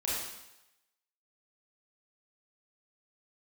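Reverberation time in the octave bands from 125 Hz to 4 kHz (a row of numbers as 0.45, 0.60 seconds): 0.80, 0.80, 0.90, 0.95, 0.95, 0.90 seconds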